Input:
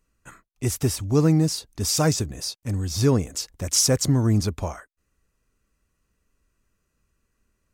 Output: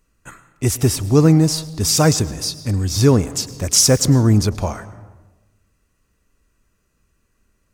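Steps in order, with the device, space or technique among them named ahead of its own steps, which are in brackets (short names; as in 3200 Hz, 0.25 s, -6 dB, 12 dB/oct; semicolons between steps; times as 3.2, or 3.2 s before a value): saturated reverb return (on a send at -12.5 dB: reverb RT60 1.1 s, pre-delay 96 ms + soft clip -23 dBFS, distortion -6 dB); on the sum: gain +6.5 dB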